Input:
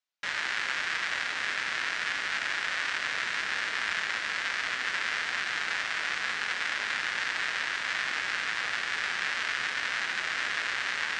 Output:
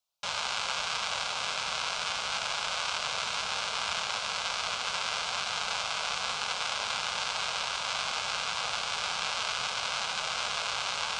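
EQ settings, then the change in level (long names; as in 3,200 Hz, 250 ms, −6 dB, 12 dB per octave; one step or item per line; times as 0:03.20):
phaser with its sweep stopped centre 760 Hz, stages 4
+7.0 dB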